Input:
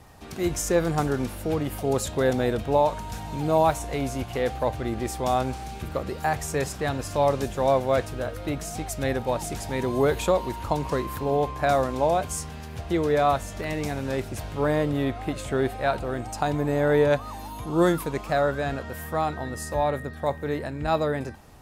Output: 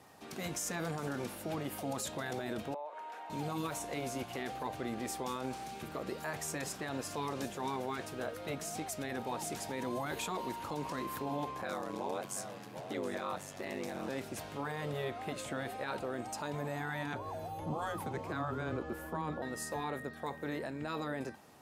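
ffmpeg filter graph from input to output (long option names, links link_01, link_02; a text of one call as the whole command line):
ffmpeg -i in.wav -filter_complex "[0:a]asettb=1/sr,asplit=3[link_01][link_02][link_03];[link_01]atrim=end=2.744[link_04];[link_02]atrim=start=2.74:end=3.3,asetpts=PTS-STARTPTS,afade=type=in:duration=0.004:curve=qsin,afade=type=out:start_time=0.556:duration=0.004:curve=qsin,highpass=frequency=280:width=0.5412,highpass=frequency=280:width=1.3066,acrossover=split=400 2700:gain=0.112 1 0.112[link_05][link_06][link_07];[link_05][link_06][link_07]amix=inputs=3:normalize=0,acompressor=threshold=-35dB:ratio=5:attack=3.2:release=140:knee=1:detection=peak[link_08];[link_03]atrim=start=3.296[link_09];[link_04][link_08]acrossfade=duration=0.004:curve1=hsin:curve2=qsin[link_10];[link_10][link_09]acrossfade=duration=0.004:curve1=qsin:curve2=hsin,asettb=1/sr,asplit=3[link_11][link_12][link_13];[link_11]atrim=end=11.614[link_14];[link_12]atrim=start=11.61:end=14.09,asetpts=PTS-STARTPTS,afade=type=in:duration=0.004:curve=qsin,afade=type=out:start_time=2.476:duration=0.004:curve=qsin,aeval=exprs='val(0)*sin(2*PI*48*n/s)':channel_layout=same,aecho=1:1:735:0.141,atrim=end_sample=109368[link_15];[link_13]atrim=start=14.086[link_16];[link_14][link_15]acrossfade=duration=0.004:curve1=hsin:curve2=qsin[link_17];[link_17][link_16]acrossfade=duration=0.004:curve1=qsin:curve2=hsin,asettb=1/sr,asplit=3[link_18][link_19][link_20];[link_18]atrim=end=17.134[link_21];[link_19]atrim=start=17.13:end=19.42,asetpts=PTS-STARTPTS,afade=type=in:duration=0.004:curve=qsin,afade=type=out:start_time=2.286:duration=0.004:curve=qsin,tiltshelf=frequency=1300:gain=8,afreqshift=-150[link_22];[link_20]atrim=start=19.416[link_23];[link_21][link_22]acrossfade=duration=0.004:curve1=hsin:curve2=qsin[link_24];[link_24][link_23]acrossfade=duration=0.004:curve1=qsin:curve2=hsin,highpass=190,afftfilt=real='re*lt(hypot(re,im),0.355)':imag='im*lt(hypot(re,im),0.355)':win_size=1024:overlap=0.75,alimiter=limit=-22.5dB:level=0:latency=1:release=24,volume=-5.5dB" out.wav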